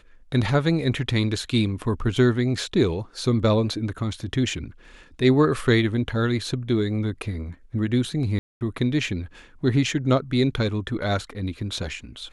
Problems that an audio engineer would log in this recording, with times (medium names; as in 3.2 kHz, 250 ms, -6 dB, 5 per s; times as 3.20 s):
8.39–8.61 s: dropout 219 ms